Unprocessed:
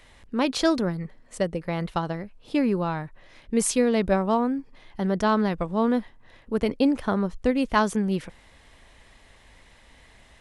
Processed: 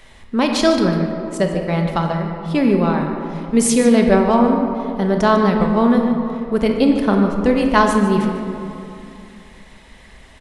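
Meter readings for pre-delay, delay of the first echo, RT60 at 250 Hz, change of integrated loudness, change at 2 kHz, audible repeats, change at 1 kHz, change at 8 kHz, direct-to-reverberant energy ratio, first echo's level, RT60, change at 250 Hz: 5 ms, 149 ms, 3.1 s, +8.5 dB, +8.0 dB, 1, +8.5 dB, +7.0 dB, 2.0 dB, -12.5 dB, 2.7 s, +9.0 dB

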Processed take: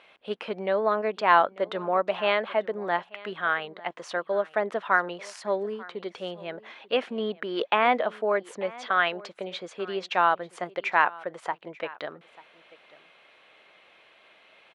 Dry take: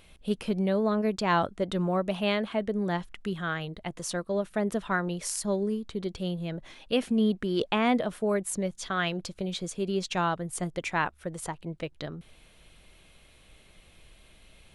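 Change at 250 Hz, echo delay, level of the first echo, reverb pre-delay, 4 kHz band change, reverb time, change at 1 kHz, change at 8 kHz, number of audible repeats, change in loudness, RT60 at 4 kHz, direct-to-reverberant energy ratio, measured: -9.0 dB, 891 ms, -21.0 dB, no reverb, +0.5 dB, no reverb, +7.0 dB, -14.0 dB, 1, +2.5 dB, no reverb, no reverb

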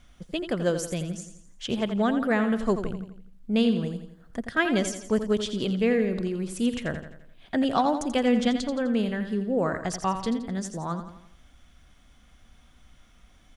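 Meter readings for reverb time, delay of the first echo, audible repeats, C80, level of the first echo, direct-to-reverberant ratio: no reverb, 85 ms, 5, no reverb, -9.5 dB, no reverb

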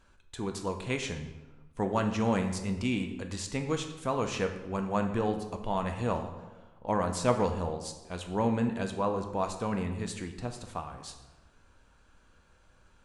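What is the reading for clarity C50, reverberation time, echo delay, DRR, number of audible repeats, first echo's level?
8.0 dB, 1.2 s, no echo, 5.0 dB, no echo, no echo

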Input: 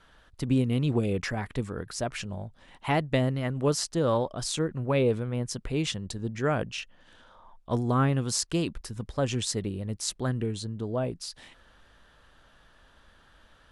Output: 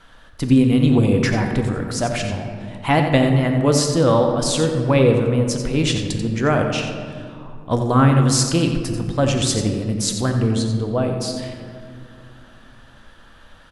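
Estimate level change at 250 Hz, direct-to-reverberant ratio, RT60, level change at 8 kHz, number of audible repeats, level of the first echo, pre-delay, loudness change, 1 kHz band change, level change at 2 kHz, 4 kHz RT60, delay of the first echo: +12.0 dB, 3.5 dB, 2.4 s, +9.5 dB, 1, -9.5 dB, 3 ms, +10.5 dB, +10.5 dB, +10.0 dB, 1.1 s, 89 ms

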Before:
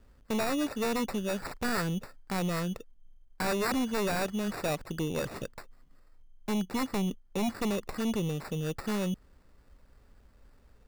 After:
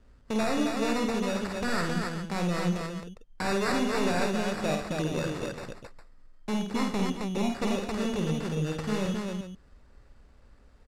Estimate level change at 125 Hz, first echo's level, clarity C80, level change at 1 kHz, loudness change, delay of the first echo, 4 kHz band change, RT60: +3.0 dB, -4.5 dB, no reverb, +3.0 dB, +2.5 dB, 51 ms, +3.0 dB, no reverb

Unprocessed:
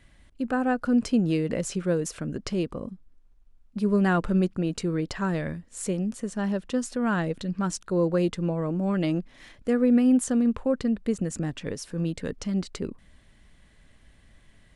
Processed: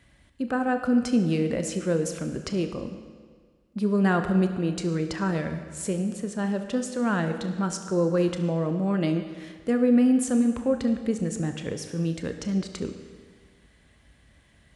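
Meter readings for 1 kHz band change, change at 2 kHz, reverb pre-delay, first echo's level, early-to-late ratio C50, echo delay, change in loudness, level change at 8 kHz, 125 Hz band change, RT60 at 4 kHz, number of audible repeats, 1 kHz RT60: +1.0 dB, +1.0 dB, 27 ms, no echo, 8.0 dB, no echo, +0.5 dB, +0.5 dB, +1.0 dB, 1.5 s, no echo, 1.7 s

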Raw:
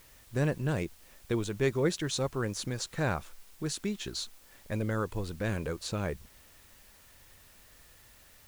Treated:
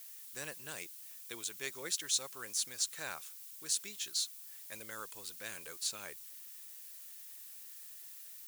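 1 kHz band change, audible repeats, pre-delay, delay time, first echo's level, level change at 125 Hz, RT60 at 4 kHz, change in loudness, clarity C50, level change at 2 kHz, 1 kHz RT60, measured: -11.0 dB, no echo, no reverb, no echo, no echo, -29.0 dB, no reverb, -6.0 dB, no reverb, -6.5 dB, no reverb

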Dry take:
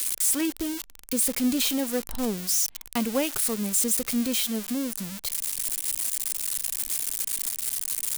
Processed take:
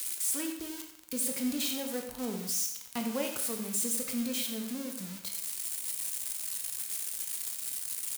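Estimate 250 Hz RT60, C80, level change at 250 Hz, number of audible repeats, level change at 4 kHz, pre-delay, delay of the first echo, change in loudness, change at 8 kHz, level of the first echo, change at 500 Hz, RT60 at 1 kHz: 0.70 s, 8.0 dB, -8.0 dB, 1, -7.0 dB, 15 ms, 90 ms, -7.0 dB, -7.0 dB, -13.0 dB, -7.0 dB, 0.75 s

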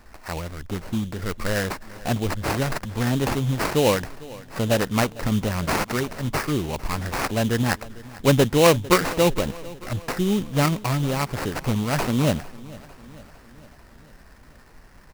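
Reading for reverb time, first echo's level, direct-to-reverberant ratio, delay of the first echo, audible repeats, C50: no reverb, -20.0 dB, no reverb, 451 ms, 4, no reverb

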